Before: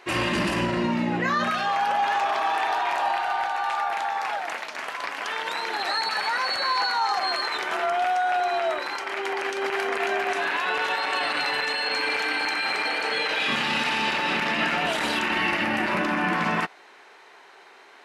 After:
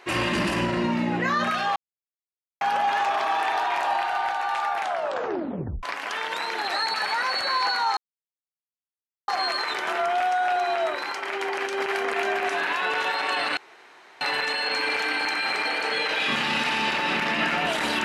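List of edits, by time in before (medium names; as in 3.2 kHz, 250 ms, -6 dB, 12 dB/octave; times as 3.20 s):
1.76 s: insert silence 0.85 s
3.95 s: tape stop 1.03 s
7.12 s: insert silence 1.31 s
11.41 s: insert room tone 0.64 s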